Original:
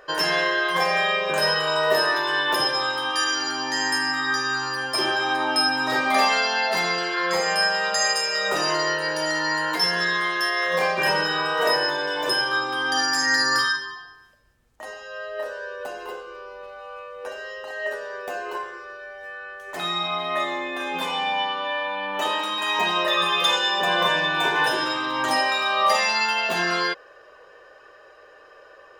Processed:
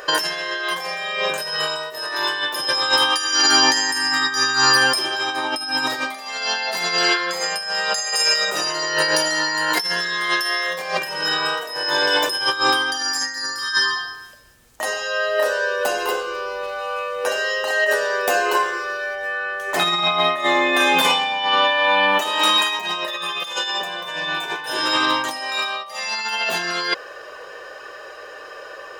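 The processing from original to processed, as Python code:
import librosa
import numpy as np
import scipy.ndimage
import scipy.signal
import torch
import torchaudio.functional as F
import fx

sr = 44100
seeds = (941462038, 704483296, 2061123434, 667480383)

y = fx.low_shelf(x, sr, hz=110.0, db=-6.5)
y = fx.over_compress(y, sr, threshold_db=-28.0, ratio=-0.5)
y = fx.high_shelf(y, sr, hz=3300.0, db=fx.steps((0.0, 10.0), (19.14, 2.5), (20.73, 8.0)))
y = F.gain(torch.from_numpy(y), 6.0).numpy()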